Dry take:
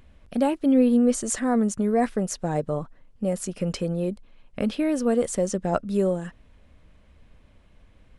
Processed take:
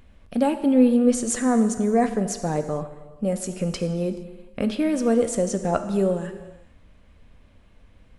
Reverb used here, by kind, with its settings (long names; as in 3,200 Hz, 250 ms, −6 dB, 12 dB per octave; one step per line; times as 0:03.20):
reverb whose tail is shaped and stops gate 490 ms falling, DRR 8 dB
level +1 dB